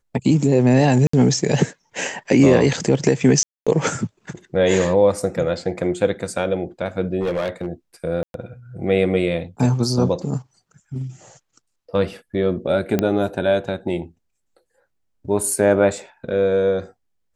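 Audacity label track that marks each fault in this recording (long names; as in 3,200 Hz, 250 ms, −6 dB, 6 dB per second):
1.070000	1.130000	drop-out 64 ms
3.430000	3.670000	drop-out 236 ms
7.210000	7.680000	clipping −18 dBFS
8.230000	8.340000	drop-out 112 ms
12.990000	12.990000	click −6 dBFS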